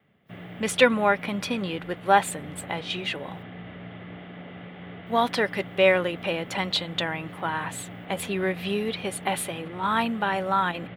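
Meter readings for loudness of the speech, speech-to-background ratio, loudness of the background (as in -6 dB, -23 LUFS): -26.0 LUFS, 15.5 dB, -41.5 LUFS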